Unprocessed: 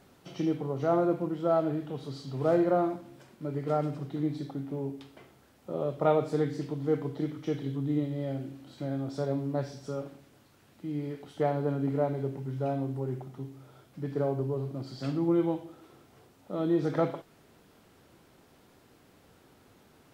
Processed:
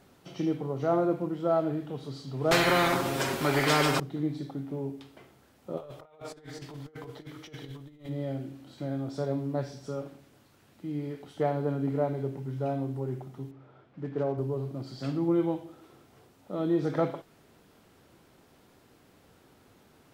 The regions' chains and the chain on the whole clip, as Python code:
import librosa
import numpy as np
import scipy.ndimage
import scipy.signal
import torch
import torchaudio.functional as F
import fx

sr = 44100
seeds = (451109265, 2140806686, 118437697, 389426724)

y = fx.chain(x, sr, fx.peak_eq(hz=380.0, db=13.5, octaves=0.45),
    fx.comb(ms=7.4, depth=0.72),
    fx.spectral_comp(ratio=4.0), at=(2.51, 4.0))
y = fx.chain(y, sr, fx.echo_feedback(ms=162, feedback_pct=43, wet_db=-19),
    fx.over_compress(threshold_db=-34.0, ratio=-0.5),
    fx.peak_eq(hz=220.0, db=-13.5, octaves=2.5), at=(5.77, 8.09))
y = fx.chain(y, sr, fx.block_float(bits=5),
    fx.lowpass(hz=2300.0, slope=12),
    fx.low_shelf(hz=80.0, db=-9.5), at=(13.51, 14.38))